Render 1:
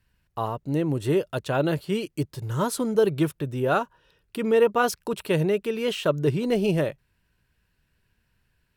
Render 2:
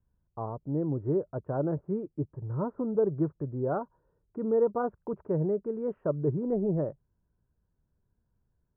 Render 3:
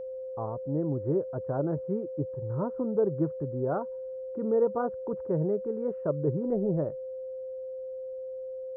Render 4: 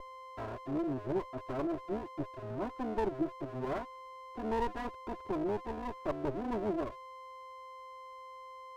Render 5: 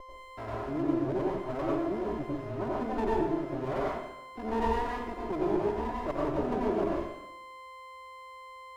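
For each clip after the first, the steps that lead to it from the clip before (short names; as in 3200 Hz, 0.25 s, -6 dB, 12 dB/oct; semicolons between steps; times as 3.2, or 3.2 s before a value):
Bessel low-pass 740 Hz, order 8; gain -4.5 dB
whine 520 Hz -35 dBFS
minimum comb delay 3 ms; gain -4.5 dB
plate-style reverb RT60 0.83 s, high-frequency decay 0.9×, pre-delay 80 ms, DRR -4.5 dB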